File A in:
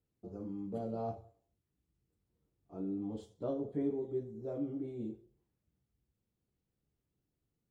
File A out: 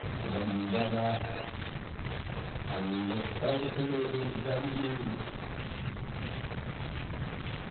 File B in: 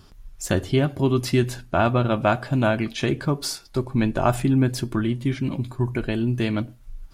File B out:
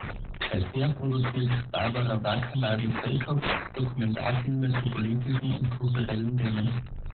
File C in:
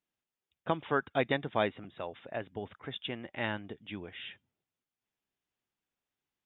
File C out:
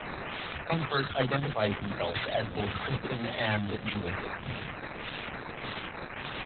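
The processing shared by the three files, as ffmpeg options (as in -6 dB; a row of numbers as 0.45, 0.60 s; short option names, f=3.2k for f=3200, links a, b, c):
-filter_complex "[0:a]aeval=exprs='val(0)+0.5*0.0211*sgn(val(0))':c=same,bandreject=f=60:t=h:w=6,bandreject=f=120:t=h:w=6,bandreject=f=180:t=h:w=6,bandreject=f=240:t=h:w=6,acontrast=63,equalizer=f=125:t=o:w=0.33:g=5,equalizer=f=315:t=o:w=0.33:g=-7,equalizer=f=2k:t=o:w=0.33:g=-4,equalizer=f=3.15k:t=o:w=0.33:g=-10,acrossover=split=370[a][b];[a]adelay=30[c];[c][b]amix=inputs=2:normalize=0,areverse,acompressor=threshold=-23dB:ratio=10,areverse,highpass=41,bandreject=f=980:w=10,acrusher=samples=11:mix=1:aa=0.000001:lfo=1:lforange=6.6:lforate=1.7,highshelf=f=2.2k:g=8,afftdn=nr=31:nf=-49" -ar 48000 -c:a libopus -b:a 8k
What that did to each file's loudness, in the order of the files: +4.5, -5.0, +3.0 LU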